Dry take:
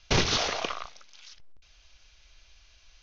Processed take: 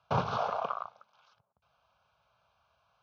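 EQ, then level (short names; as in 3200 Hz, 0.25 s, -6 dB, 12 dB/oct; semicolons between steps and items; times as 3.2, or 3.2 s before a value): HPF 110 Hz 24 dB/oct; synth low-pass 1400 Hz, resonance Q 1.7; fixed phaser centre 790 Hz, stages 4; 0.0 dB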